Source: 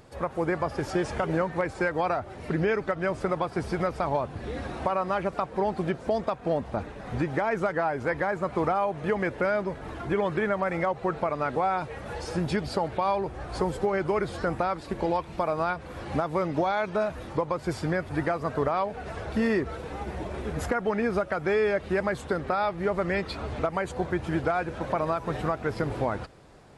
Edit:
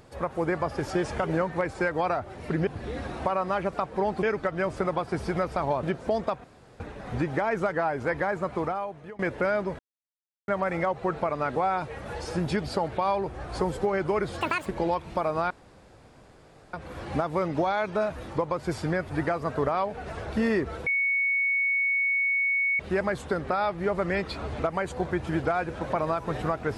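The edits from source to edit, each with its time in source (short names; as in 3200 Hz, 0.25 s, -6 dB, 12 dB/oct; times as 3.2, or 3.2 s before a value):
4.27–5.83 move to 2.67
6.44–6.8 room tone
8.37–9.19 fade out, to -23 dB
9.79–10.48 mute
14.41–14.89 speed 189%
15.73 insert room tone 1.23 s
19.86–21.79 bleep 2220 Hz -22 dBFS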